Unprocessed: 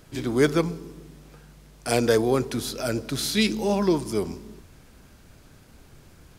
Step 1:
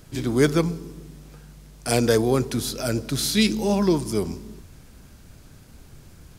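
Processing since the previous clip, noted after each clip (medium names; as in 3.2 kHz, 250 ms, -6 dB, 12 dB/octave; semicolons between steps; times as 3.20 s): tone controls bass +5 dB, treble +4 dB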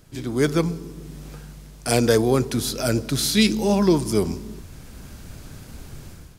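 level rider gain up to 12 dB; trim -4 dB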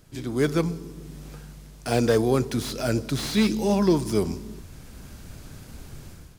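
slew-rate limiter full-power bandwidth 190 Hz; trim -2.5 dB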